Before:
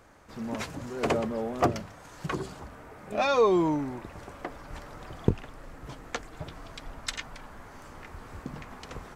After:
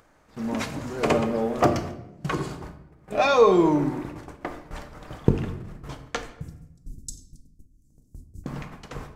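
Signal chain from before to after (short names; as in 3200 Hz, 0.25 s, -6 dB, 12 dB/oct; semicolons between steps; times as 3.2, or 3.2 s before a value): 6.26–8.44 inverse Chebyshev band-stop 920–2000 Hz, stop band 80 dB; gate -42 dBFS, range -32 dB; upward compressor, threshold -45 dBFS; shoebox room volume 290 m³, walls mixed, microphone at 0.5 m; gain +4 dB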